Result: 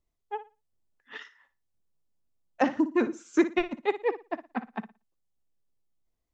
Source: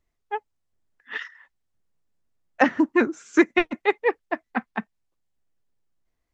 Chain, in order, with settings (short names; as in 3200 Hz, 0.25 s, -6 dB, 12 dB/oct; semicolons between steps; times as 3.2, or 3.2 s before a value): bell 1800 Hz -7 dB 1.1 oct; on a send: flutter echo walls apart 10 m, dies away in 0.27 s; on the sum: gain -4.5 dB